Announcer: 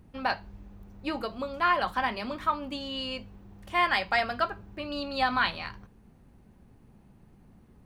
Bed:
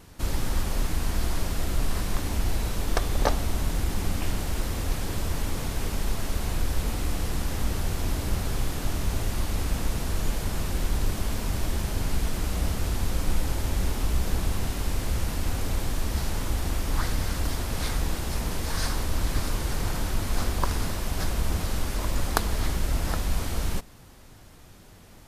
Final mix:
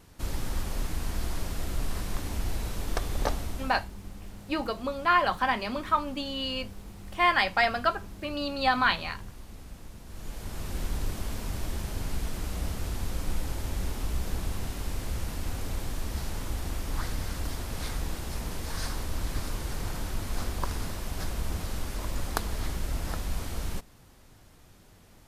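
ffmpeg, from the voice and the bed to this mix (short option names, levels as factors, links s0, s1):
-filter_complex "[0:a]adelay=3450,volume=1.26[s0];[1:a]volume=2.51,afade=t=out:st=3.3:d=0.59:silence=0.211349,afade=t=in:st=10.05:d=0.74:silence=0.223872[s1];[s0][s1]amix=inputs=2:normalize=0"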